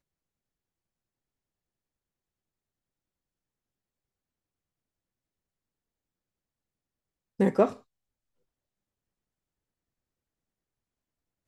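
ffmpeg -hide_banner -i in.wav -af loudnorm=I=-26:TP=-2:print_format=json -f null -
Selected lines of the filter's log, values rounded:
"input_i" : "-26.2",
"input_tp" : "-8.8",
"input_lra" : "0.0",
"input_thresh" : "-37.5",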